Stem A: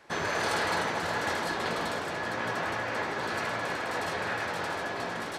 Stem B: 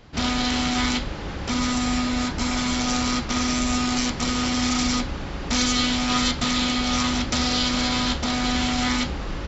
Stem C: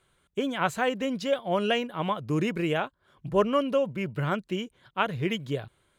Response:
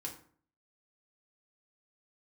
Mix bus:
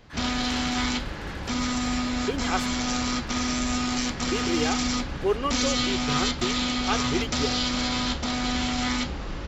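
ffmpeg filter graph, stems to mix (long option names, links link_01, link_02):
-filter_complex "[0:a]highpass=1500,equalizer=frequency=7400:width_type=o:width=2.1:gain=-8,volume=-6dB[link_01];[1:a]volume=-3.5dB[link_02];[2:a]aecho=1:1:2.5:0.83,adelay=1900,volume=-3.5dB,asplit=3[link_03][link_04][link_05];[link_03]atrim=end=2.68,asetpts=PTS-STARTPTS,afade=type=out:start_time=2.676:duration=0.004:curve=hsin[link_06];[link_04]atrim=start=2.68:end=4.31,asetpts=PTS-STARTPTS,volume=0[link_07];[link_05]atrim=start=4.31,asetpts=PTS-STARTPTS,afade=type=in:duration=0.004:curve=hsin[link_08];[link_06][link_07][link_08]concat=n=3:v=0:a=1[link_09];[link_01][link_02][link_09]amix=inputs=3:normalize=0"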